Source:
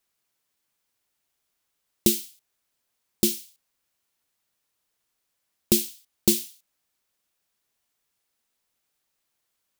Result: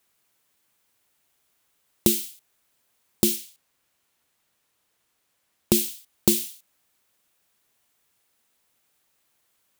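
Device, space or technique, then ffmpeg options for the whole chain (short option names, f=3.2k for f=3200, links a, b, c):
mastering chain: -filter_complex "[0:a]asettb=1/sr,asplit=3[a][b][c];[a]atrim=end=3.364[d];[b]atrim=start=3.36:end=5.75,asetpts=PTS-STARTPTS,afade=t=in:d=0.004:c=qsin,afade=t=out:st=2.386:d=0.004:c=qsin,highshelf=f=8.2k:g=-4.5[e];[c]atrim=start=5.746[f];[d][e]acrossfade=d=0.004:c1=hsin:c2=qsin[g];[g][f]acrossfade=d=0.004:c1=qsin:c2=hsin,highpass=42,equalizer=f=5.1k:t=o:w=0.77:g=-3,acompressor=threshold=-24dB:ratio=2.5,alimiter=level_in=9dB:limit=-1dB:release=50:level=0:latency=1,volume=-1dB"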